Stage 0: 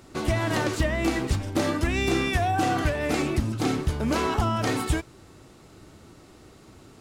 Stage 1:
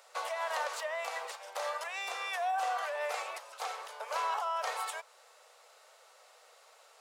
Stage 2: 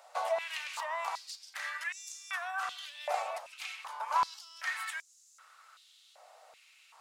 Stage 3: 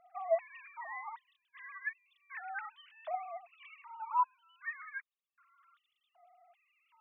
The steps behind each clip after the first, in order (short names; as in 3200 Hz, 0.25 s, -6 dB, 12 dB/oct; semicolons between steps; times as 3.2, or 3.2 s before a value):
compressor 4:1, threshold -28 dBFS, peak gain reduction 8.5 dB; dynamic EQ 1000 Hz, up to +7 dB, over -49 dBFS, Q 1.6; steep high-pass 490 Hz 72 dB/oct; gain -3.5 dB
stepped high-pass 2.6 Hz 690–6500 Hz; gain -3 dB
sine-wave speech; gain -3 dB